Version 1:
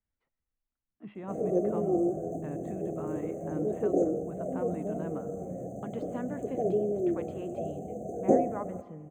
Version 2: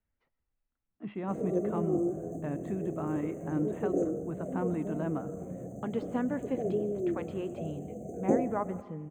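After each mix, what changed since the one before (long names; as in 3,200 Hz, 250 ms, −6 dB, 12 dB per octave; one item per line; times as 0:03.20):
speech +5.0 dB
background: add parametric band 1,200 Hz −10.5 dB 2.2 octaves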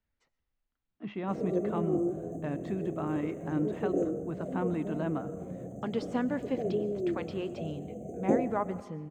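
speech: remove high-frequency loss of the air 370 metres
background: add high-shelf EQ 6,000 Hz −5.5 dB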